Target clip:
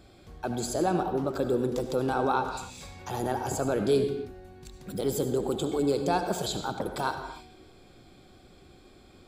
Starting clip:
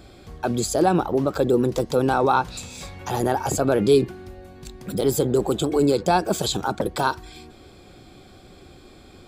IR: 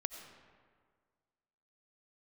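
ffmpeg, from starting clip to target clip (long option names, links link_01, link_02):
-filter_complex "[1:a]atrim=start_sample=2205,afade=type=out:start_time=0.41:duration=0.01,atrim=end_sample=18522,asetrate=52920,aresample=44100[link_01];[0:a][link_01]afir=irnorm=-1:irlink=0,volume=-5dB"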